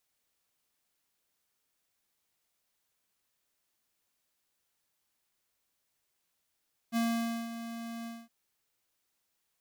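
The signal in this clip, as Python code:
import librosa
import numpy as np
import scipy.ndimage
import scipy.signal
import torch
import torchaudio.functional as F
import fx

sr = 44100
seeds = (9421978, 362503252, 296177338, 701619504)

y = fx.adsr_tone(sr, wave='square', hz=231.0, attack_ms=45.0, decay_ms=518.0, sustain_db=-12.0, held_s=1.14, release_ms=224.0, level_db=-28.5)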